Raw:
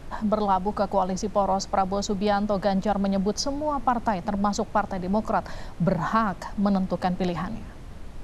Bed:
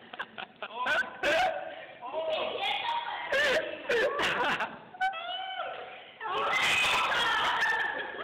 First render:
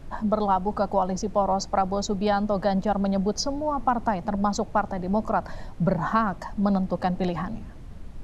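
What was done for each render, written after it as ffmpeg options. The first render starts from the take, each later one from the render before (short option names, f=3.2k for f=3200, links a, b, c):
-af "afftdn=nr=6:nf=-40"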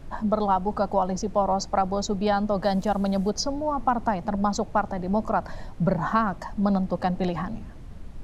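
-filter_complex "[0:a]asettb=1/sr,asplit=3[a][b][c];[a]atrim=end=2.644[d];[b]atrim=start=2.64:end=3.3,asetpts=PTS-STARTPTS,afade=t=in:d=0.004:c=qsin,afade=t=out:st=0.656:d=0.004:c=qsin,aemphasis=mode=production:type=50fm[e];[c]atrim=start=3.296[f];[d][e]acrossfade=d=0.004:c1=hsin:c2=qsin[g];[g][f]acrossfade=d=0.004:c1=qsin:c2=hsin"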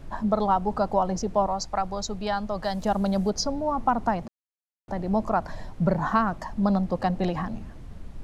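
-filter_complex "[0:a]asettb=1/sr,asplit=3[a][b][c];[a]atrim=end=1.474[d];[b]atrim=start=1.47:end=2.82,asetpts=PTS-STARTPTS,afade=t=in:d=0.004:c=qsin,afade=t=out:st=1.346:d=0.004:c=qsin,equalizer=f=290:w=0.42:g=-7.5[e];[c]atrim=start=2.816[f];[d][e]acrossfade=d=0.004:c1=hsin:c2=qsin[g];[g][f]acrossfade=d=0.004:c1=qsin:c2=hsin,asplit=3[h][i][j];[h]atrim=end=4.28,asetpts=PTS-STARTPTS,afade=t=out:st=4.276:d=0.004:c=hsin[k];[i]atrim=start=4.28:end=4.88,asetpts=PTS-STARTPTS,volume=0[l];[j]atrim=start=4.88,asetpts=PTS-STARTPTS,afade=t=in:d=0.004:c=hsin[m];[k][l][m]concat=n=3:v=0:a=1"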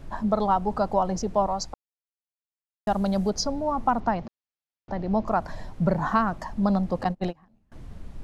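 -filter_complex "[0:a]asettb=1/sr,asplit=3[a][b][c];[a]atrim=end=4.004[d];[b]atrim=start=4:end=5.28,asetpts=PTS-STARTPTS,afade=t=in:d=0.004:c=qsin,afade=t=out:st=1.276:d=0.004:c=qsin,lowpass=f=5.6k:w=0.5412,lowpass=f=5.6k:w=1.3066[e];[c]atrim=start=5.276[f];[d][e]acrossfade=d=0.004:c1=hsin:c2=qsin[g];[g][f]acrossfade=d=0.004:c1=qsin:c2=hsin,asettb=1/sr,asplit=3[h][i][j];[h]atrim=end=7.044[k];[i]atrim=start=7.04:end=7.72,asetpts=PTS-STARTPTS,afade=t=in:d=0.004:c=qsin,afade=t=out:st=0.676:d=0.004:c=qsin,agate=range=-29dB:threshold=-25dB:ratio=16:release=100:detection=peak[l];[j]atrim=start=7.716[m];[k][l]acrossfade=d=0.004:c1=hsin:c2=qsin[n];[n][m]acrossfade=d=0.004:c1=qsin:c2=hsin,asplit=3[o][p][q];[o]atrim=end=1.74,asetpts=PTS-STARTPTS,afade=t=out:st=1.736:d=0.004:c=hsin[r];[p]atrim=start=1.74:end=2.87,asetpts=PTS-STARTPTS,volume=0[s];[q]atrim=start=2.87,asetpts=PTS-STARTPTS,afade=t=in:d=0.004:c=hsin[t];[r][s][t]concat=n=3:v=0:a=1"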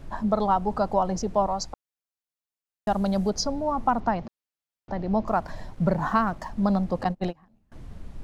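-filter_complex "[0:a]asettb=1/sr,asplit=3[a][b][c];[a]atrim=end=5.274[d];[b]atrim=start=5.27:end=6.85,asetpts=PTS-STARTPTS,afade=t=in:d=0.004:c=qsin,afade=t=out:st=1.576:d=0.004:c=qsin,aeval=exprs='sgn(val(0))*max(abs(val(0))-0.00211,0)':c=same[e];[c]atrim=start=6.846[f];[d][e]acrossfade=d=0.004:c1=hsin:c2=qsin[g];[g][f]acrossfade=d=0.004:c1=qsin:c2=hsin"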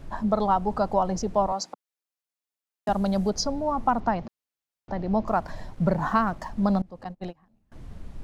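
-filter_complex "[0:a]asettb=1/sr,asplit=3[a][b][c];[a]atrim=end=1.524[d];[b]atrim=start=1.52:end=2.89,asetpts=PTS-STARTPTS,afade=t=in:d=0.004:c=qsin,afade=t=out:st=1.366:d=0.004:c=qsin,highpass=f=200:w=0.5412,highpass=f=200:w=1.3066[e];[c]atrim=start=2.886[f];[d][e]acrossfade=d=0.004:c1=hsin:c2=qsin[g];[g][f]acrossfade=d=0.004:c1=qsin:c2=hsin,asplit=2[h][i];[h]atrim=end=6.82,asetpts=PTS-STARTPTS,afade=t=out:st=6.816:d=0.004:c=hsin:silence=0.0707946[j];[i]atrim=start=6.82,asetpts=PTS-STARTPTS,afade=t=in:d=1.05:silence=0.0707946[k];[j][k]concat=n=2:v=0:a=1"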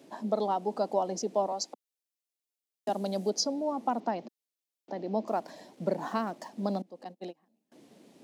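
-af "highpass=f=260:w=0.5412,highpass=f=260:w=1.3066,equalizer=f=1.3k:w=1:g=-13"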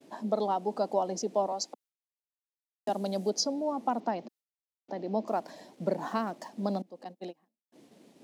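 -af "agate=range=-33dB:threshold=-55dB:ratio=3:detection=peak"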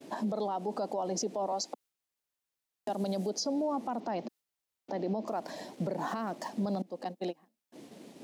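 -filter_complex "[0:a]asplit=2[a][b];[b]acompressor=threshold=-37dB:ratio=6,volume=2dB[c];[a][c]amix=inputs=2:normalize=0,alimiter=level_in=1dB:limit=-24dB:level=0:latency=1:release=43,volume=-1dB"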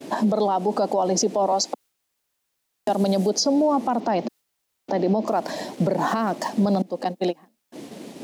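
-af "volume=12dB"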